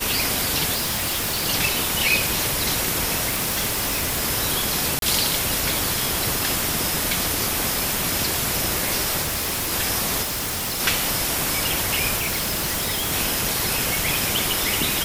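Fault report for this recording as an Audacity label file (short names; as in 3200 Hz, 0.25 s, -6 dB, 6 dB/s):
0.740000	1.470000	clipped -20.5 dBFS
3.280000	4.230000	clipped -19 dBFS
4.990000	5.020000	gap 32 ms
9.210000	9.730000	clipped -21.5 dBFS
10.220000	10.810000	clipped -23.5 dBFS
12.160000	13.130000	clipped -20.5 dBFS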